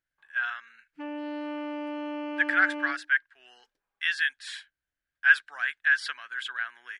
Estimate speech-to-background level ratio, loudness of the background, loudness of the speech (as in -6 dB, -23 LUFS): 9.5 dB, -36.0 LUFS, -26.5 LUFS